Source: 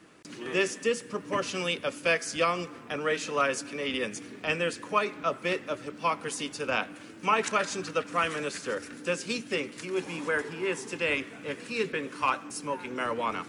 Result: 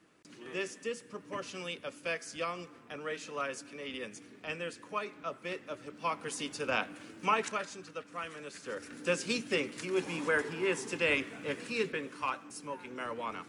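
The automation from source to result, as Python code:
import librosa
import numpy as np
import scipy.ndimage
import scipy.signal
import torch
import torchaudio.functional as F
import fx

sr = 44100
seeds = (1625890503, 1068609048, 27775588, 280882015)

y = fx.gain(x, sr, db=fx.line((5.48, -10.0), (6.55, -3.0), (7.28, -3.0), (7.78, -13.0), (8.42, -13.0), (9.11, -1.0), (11.62, -1.0), (12.31, -8.0)))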